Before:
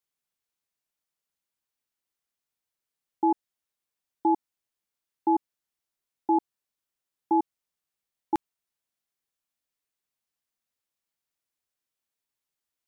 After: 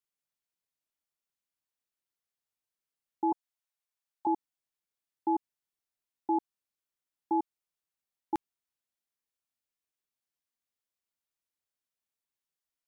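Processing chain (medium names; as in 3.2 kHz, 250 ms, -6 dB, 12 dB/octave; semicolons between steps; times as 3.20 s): 3.32–4.27 s: high-pass 620 Hz 24 dB/octave; trim -5.5 dB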